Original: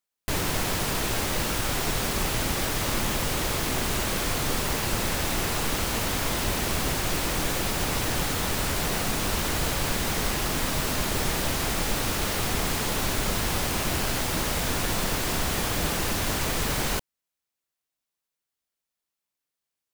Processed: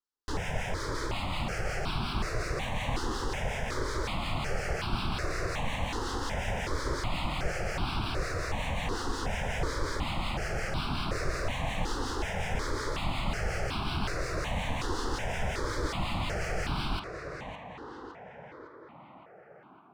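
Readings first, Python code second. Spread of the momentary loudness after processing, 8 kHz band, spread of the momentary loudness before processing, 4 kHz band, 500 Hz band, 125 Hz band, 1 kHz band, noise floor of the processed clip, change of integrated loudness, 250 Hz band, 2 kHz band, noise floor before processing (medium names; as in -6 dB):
9 LU, -15.5 dB, 0 LU, -9.0 dB, -4.5 dB, -4.0 dB, -4.0 dB, -52 dBFS, -7.5 dB, -6.5 dB, -5.5 dB, under -85 dBFS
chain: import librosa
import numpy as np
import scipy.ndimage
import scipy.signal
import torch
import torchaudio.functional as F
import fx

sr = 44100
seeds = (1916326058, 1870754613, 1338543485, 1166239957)

y = fx.peak_eq(x, sr, hz=5000.0, db=3.5, octaves=0.45)
y = fx.harmonic_tremolo(y, sr, hz=5.5, depth_pct=50, crossover_hz=1200.0)
y = fx.air_absorb(y, sr, metres=110.0)
y = fx.echo_tape(y, sr, ms=560, feedback_pct=78, wet_db=-5, lp_hz=2400.0, drive_db=20.0, wow_cents=22)
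y = fx.phaser_held(y, sr, hz=2.7, low_hz=630.0, high_hz=1900.0)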